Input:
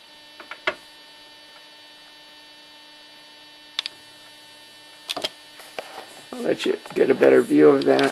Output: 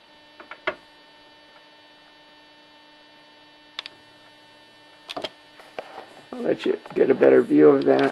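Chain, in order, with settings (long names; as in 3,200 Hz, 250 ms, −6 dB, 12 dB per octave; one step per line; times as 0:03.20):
low-pass filter 1,700 Hz 6 dB per octave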